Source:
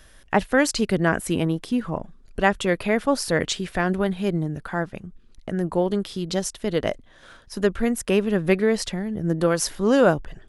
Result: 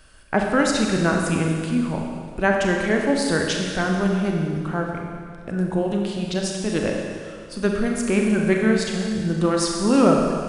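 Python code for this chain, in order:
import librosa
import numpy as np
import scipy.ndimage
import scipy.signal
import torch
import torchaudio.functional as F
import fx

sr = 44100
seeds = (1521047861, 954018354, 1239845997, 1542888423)

y = fx.formant_shift(x, sr, semitones=-2)
y = fx.rev_schroeder(y, sr, rt60_s=2.1, comb_ms=29, drr_db=0.5)
y = y * librosa.db_to_amplitude(-1.0)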